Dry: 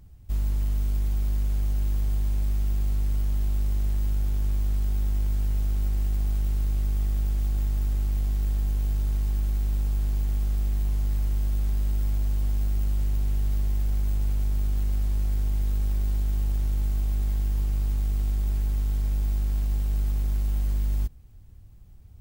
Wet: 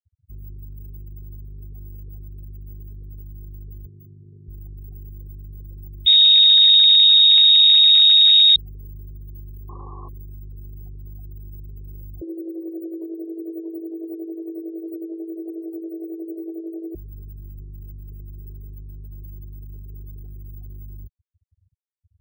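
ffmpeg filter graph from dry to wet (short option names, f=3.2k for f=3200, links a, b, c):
-filter_complex "[0:a]asettb=1/sr,asplit=3[a][b][c];[a]atrim=end=3.864[d];[b]atrim=start=3.86:end=4.48,asetpts=PTS-STARTPTS,afade=t=in:d=0.004:c=qsin,afade=t=out:st=0.616:d=0.004:c=qsin,highpass=f=97:w=0.5412,highpass=f=97:w=1.3066,highshelf=f=4.5k:g=-4.5[e];[c]atrim=start=4.476[f];[d][e]acrossfade=d=0.004:c1=hsin:c2=qsin[g];[g][f]acrossfade=d=0.004:c1=qsin:c2=hsin,asettb=1/sr,asplit=3[h][i][j];[h]atrim=end=6.064[k];[i]atrim=start=6.06:end=8.56,asetpts=PTS-STARTPTS,afade=t=in:d=0.004:c=qsin,afade=t=out:st=2.496:d=0.004:c=qsin,lowshelf=f=210:g=11,asplit=2[l][m];[m]highpass=f=720:p=1,volume=45dB,asoftclip=type=tanh:threshold=-8dB[n];[l][n]amix=inputs=2:normalize=0,lowpass=f=1k:p=1,volume=-6dB,lowpass=f=3.2k:t=q:w=0.5098,lowpass=f=3.2k:t=q:w=0.6013,lowpass=f=3.2k:t=q:w=0.9,lowpass=f=3.2k:t=q:w=2.563,afreqshift=-3800[o];[j]atrim=start=8.556[p];[k][o]acrossfade=d=0.004:c1=hsin:c2=qsin[q];[q][p]acrossfade=d=0.004:c1=qsin:c2=hsin,asettb=1/sr,asplit=3[r][s][t];[r]atrim=end=9.694[u];[s]atrim=start=9.69:end=10.09,asetpts=PTS-STARTPTS,afade=t=in:d=0.004:c=qsin,afade=t=out:st=0.396:d=0.004:c=qsin,lowpass=f=1.1k:t=q:w=12,equalizer=f=320:w=2:g=11[v];[t]atrim=start=10.086[w];[u][v]acrossfade=d=0.004:c1=hsin:c2=qsin[x];[x][w]acrossfade=d=0.004:c1=qsin:c2=hsin,asettb=1/sr,asplit=3[y][z][aa];[y]atrim=end=12.214[ab];[z]atrim=start=12.21:end=16.95,asetpts=PTS-STARTPTS,afade=t=in:d=0.004:c=qsin,afade=t=out:st=4.736:d=0.004:c=qsin,aecho=1:1:807:0.562,atrim=end_sample=209034,tremolo=f=11:d=0.54,afreqshift=280[ac];[aa]atrim=start=16.946[ad];[ab][ac]acrossfade=d=0.004:c1=hsin:c2=qsin[ae];[ae][ad]acrossfade=d=0.004:c1=qsin:c2=hsin,highpass=120,afftfilt=real='re*gte(hypot(re,im),0.0178)':imag='im*gte(hypot(re,im),0.0178)':win_size=1024:overlap=0.75,equalizer=f=240:t=o:w=1:g=-14,volume=2dB"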